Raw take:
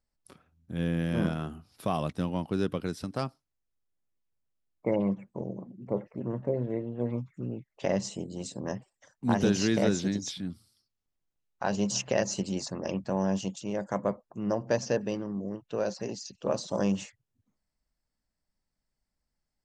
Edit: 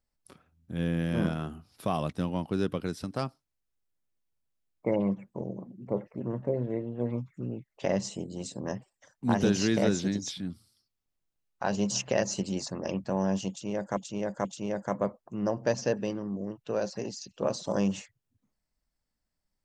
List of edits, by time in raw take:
0:13.49–0:13.97: repeat, 3 plays

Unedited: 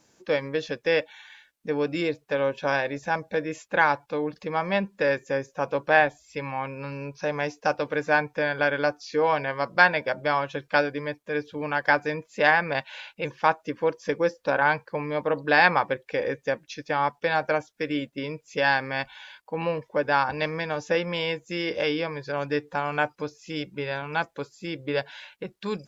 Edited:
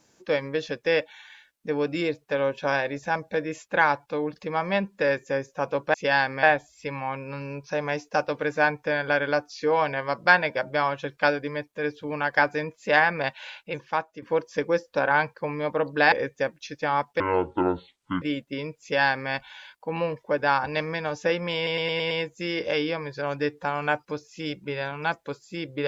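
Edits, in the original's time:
0:13.03–0:13.73: fade out, to −10.5 dB
0:15.63–0:16.19: remove
0:17.27–0:17.87: play speed 59%
0:18.47–0:18.96: duplicate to 0:05.94
0:21.21: stutter 0.11 s, 6 plays

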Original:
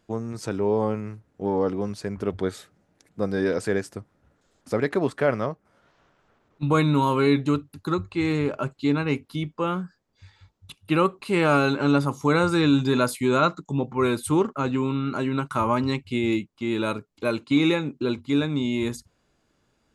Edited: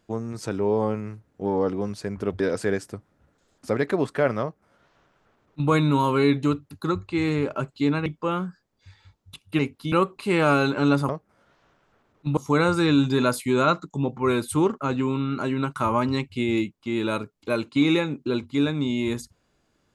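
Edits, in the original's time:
0:02.40–0:03.43: remove
0:05.45–0:06.73: duplicate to 0:12.12
0:09.09–0:09.42: move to 0:10.95

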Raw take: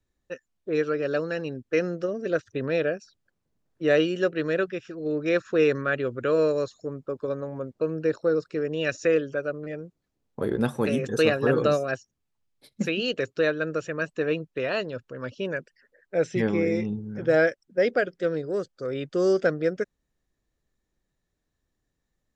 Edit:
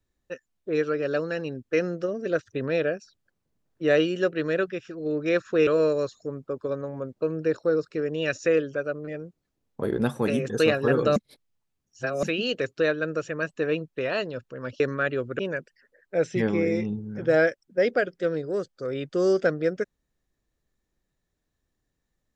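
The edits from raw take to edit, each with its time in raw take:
0:05.67–0:06.26: move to 0:15.39
0:11.75–0:12.82: reverse

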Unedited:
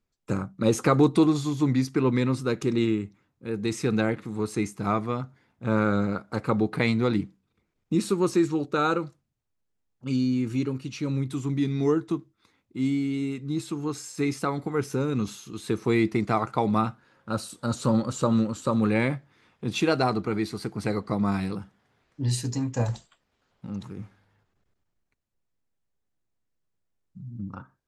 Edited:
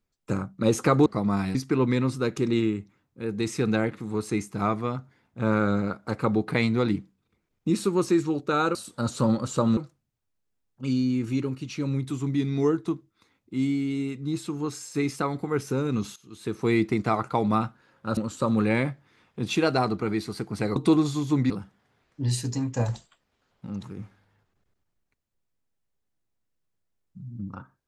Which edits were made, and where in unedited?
0:01.06–0:01.80: swap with 0:21.01–0:21.50
0:15.39–0:15.95: fade in, from −16 dB
0:17.40–0:18.42: move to 0:09.00

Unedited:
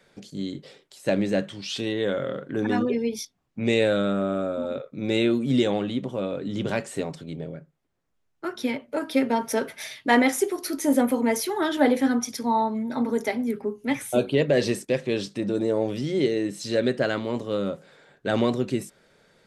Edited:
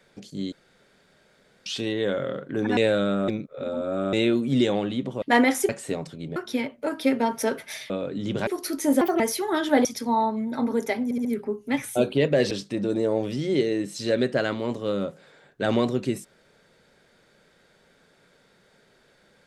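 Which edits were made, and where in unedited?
0:00.52–0:01.66: fill with room tone
0:02.77–0:03.75: remove
0:04.26–0:05.11: reverse
0:06.20–0:06.77: swap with 0:10.00–0:10.47
0:07.44–0:08.46: remove
0:11.01–0:11.28: play speed 143%
0:11.93–0:12.23: remove
0:13.42: stutter 0.07 s, 4 plays
0:14.68–0:15.16: remove

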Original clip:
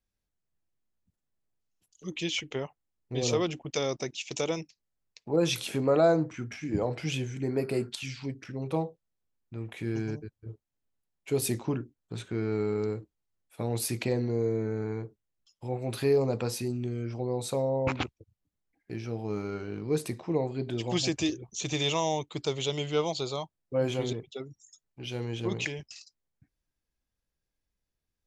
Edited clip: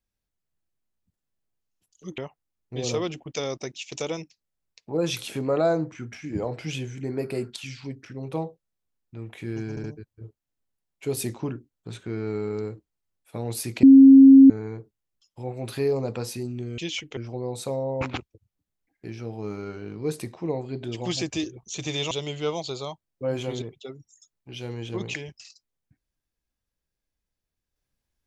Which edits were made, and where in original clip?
0:02.18–0:02.57: move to 0:17.03
0:10.09: stutter 0.07 s, 3 plays
0:14.08–0:14.75: beep over 270 Hz −6.5 dBFS
0:21.97–0:22.62: remove

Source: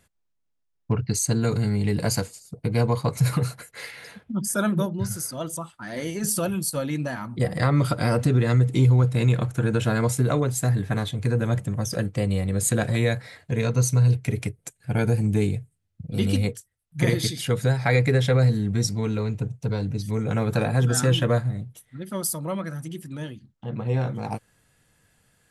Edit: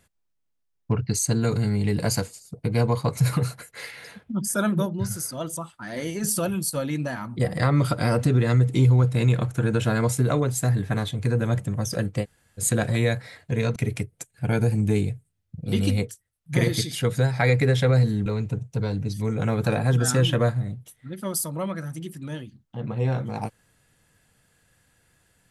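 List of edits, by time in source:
0:12.23–0:12.60: fill with room tone, crossfade 0.06 s
0:13.76–0:14.22: remove
0:18.72–0:19.15: remove

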